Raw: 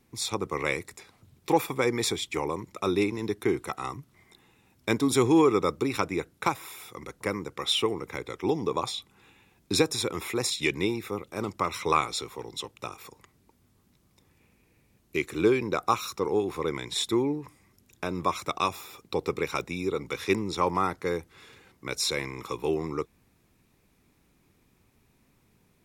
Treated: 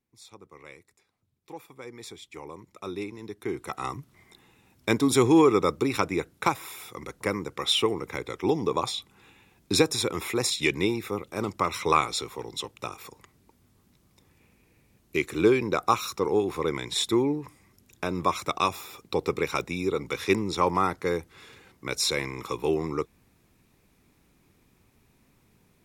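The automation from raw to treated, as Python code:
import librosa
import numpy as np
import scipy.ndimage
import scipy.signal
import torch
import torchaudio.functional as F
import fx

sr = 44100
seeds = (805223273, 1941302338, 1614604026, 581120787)

y = fx.gain(x, sr, db=fx.line((1.6, -19.0), (2.72, -9.0), (3.34, -9.0), (3.84, 2.0)))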